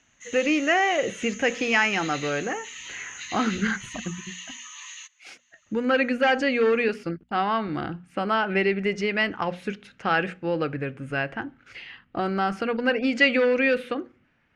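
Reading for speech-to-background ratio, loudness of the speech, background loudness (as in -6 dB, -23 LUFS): 13.0 dB, -24.5 LUFS, -37.5 LUFS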